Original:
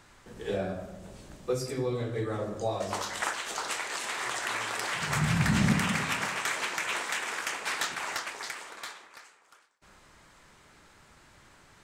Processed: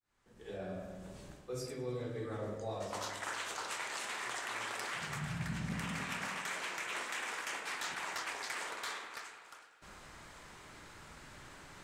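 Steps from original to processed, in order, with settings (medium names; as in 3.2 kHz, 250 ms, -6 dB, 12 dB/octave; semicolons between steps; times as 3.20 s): fade-in on the opening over 2.67 s; reverse; compression 10:1, threshold -41 dBFS, peak gain reduction 21 dB; reverse; thinning echo 103 ms, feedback 77%, level -22 dB; spring tank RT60 1.7 s, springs 48 ms, chirp 55 ms, DRR 6 dB; trim +3 dB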